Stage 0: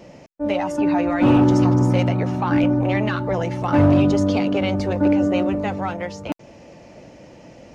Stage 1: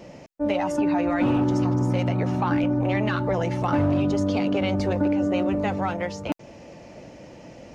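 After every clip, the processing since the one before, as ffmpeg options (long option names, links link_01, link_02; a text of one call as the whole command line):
ffmpeg -i in.wav -af "acompressor=threshold=-19dB:ratio=6" out.wav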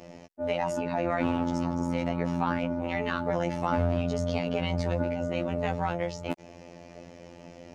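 ffmpeg -i in.wav -af "afftfilt=real='hypot(re,im)*cos(PI*b)':imag='0':win_size=2048:overlap=0.75" out.wav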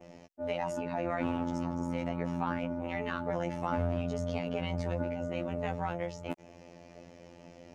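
ffmpeg -i in.wav -af "adynamicequalizer=threshold=0.00112:dfrequency=4400:dqfactor=2:tfrequency=4400:tqfactor=2:attack=5:release=100:ratio=0.375:range=2.5:mode=cutabove:tftype=bell,volume=-5dB" out.wav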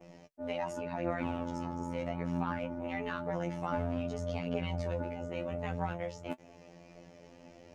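ffmpeg -i in.wav -af "flanger=delay=6.2:depth=7.8:regen=47:speed=0.29:shape=sinusoidal,volume=2dB" out.wav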